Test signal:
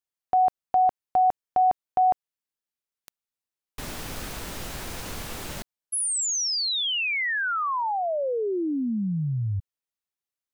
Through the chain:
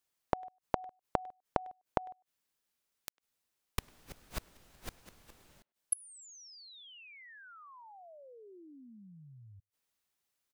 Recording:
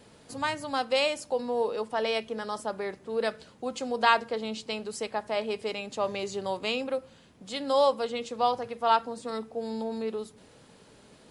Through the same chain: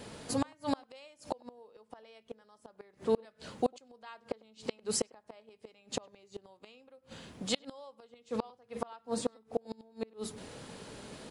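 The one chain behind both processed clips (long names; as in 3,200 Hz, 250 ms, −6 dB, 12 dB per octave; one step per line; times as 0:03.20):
gate with flip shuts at −25 dBFS, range −35 dB
far-end echo of a speakerphone 100 ms, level −26 dB
level +7.5 dB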